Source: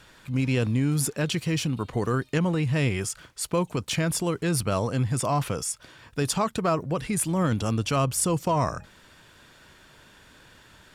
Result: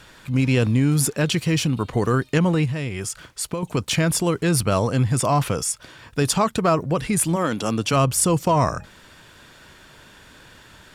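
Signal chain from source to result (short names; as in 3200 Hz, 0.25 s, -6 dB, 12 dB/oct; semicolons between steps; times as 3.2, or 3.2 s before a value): 2.65–3.63 compressor 12:1, threshold -29 dBFS, peak gain reduction 10.5 dB; 7.35–7.92 HPF 360 Hz -> 120 Hz 12 dB/oct; gain +5.5 dB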